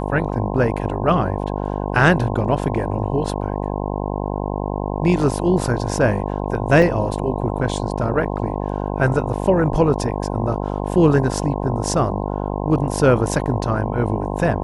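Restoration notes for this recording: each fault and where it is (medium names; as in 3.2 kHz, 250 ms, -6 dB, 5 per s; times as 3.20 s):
buzz 50 Hz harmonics 21 -24 dBFS
6.82 s: dropout 3.6 ms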